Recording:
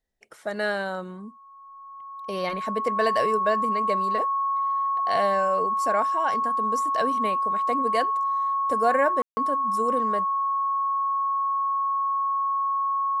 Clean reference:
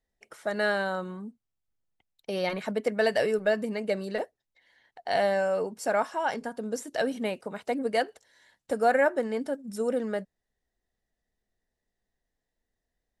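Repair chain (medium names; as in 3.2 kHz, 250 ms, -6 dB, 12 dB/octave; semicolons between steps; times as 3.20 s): band-stop 1.1 kHz, Q 30; room tone fill 9.22–9.37 s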